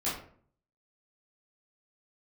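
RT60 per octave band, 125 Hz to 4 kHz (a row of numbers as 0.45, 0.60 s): 0.75, 0.65, 0.60, 0.50, 0.40, 0.30 s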